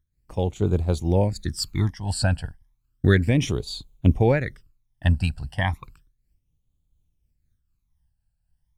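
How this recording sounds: phasing stages 12, 0.33 Hz, lowest notch 360–1800 Hz; random flutter of the level

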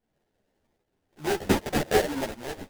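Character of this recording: tremolo saw up 1.3 Hz, depth 40%; aliases and images of a low sample rate 1.2 kHz, jitter 20%; a shimmering, thickened sound

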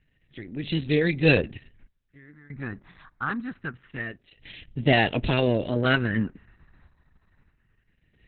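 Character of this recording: phasing stages 4, 0.25 Hz, lowest notch 500–1200 Hz; random-step tremolo 1.6 Hz, depth 95%; Opus

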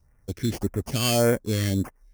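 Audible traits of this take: aliases and images of a low sample rate 3.8 kHz, jitter 0%; phasing stages 2, 1.7 Hz, lowest notch 710–4000 Hz

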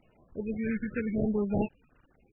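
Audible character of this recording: aliases and images of a low sample rate 2 kHz, jitter 20%; phasing stages 4, 0.89 Hz, lowest notch 730–1900 Hz; a quantiser's noise floor 10-bit, dither none; MP3

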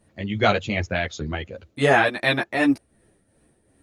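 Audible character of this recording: tremolo triangle 2.7 Hz, depth 60%; a shimmering, thickened sound

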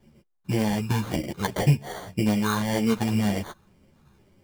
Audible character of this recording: phasing stages 4, 1.9 Hz, lowest notch 600–1300 Hz; aliases and images of a low sample rate 2.6 kHz, jitter 0%; a shimmering, thickened sound

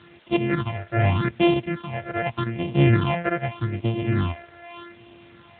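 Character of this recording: a buzz of ramps at a fixed pitch in blocks of 128 samples; phasing stages 6, 0.83 Hz, lowest notch 250–1500 Hz; a quantiser's noise floor 8-bit, dither triangular; AMR-NB

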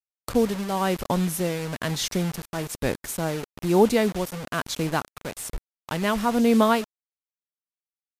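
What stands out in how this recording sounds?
tremolo triangle 1.1 Hz, depth 70%; a quantiser's noise floor 6-bit, dither none; MP3

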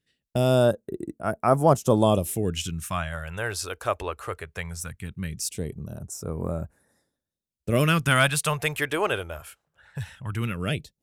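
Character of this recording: phasing stages 2, 0.19 Hz, lowest notch 170–3100 Hz

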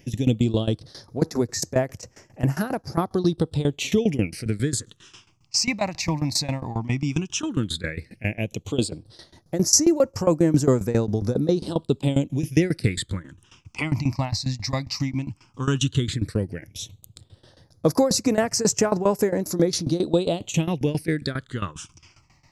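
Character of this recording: tremolo saw down 7.4 Hz, depth 90%; phasing stages 8, 0.12 Hz, lowest notch 420–3500 Hz

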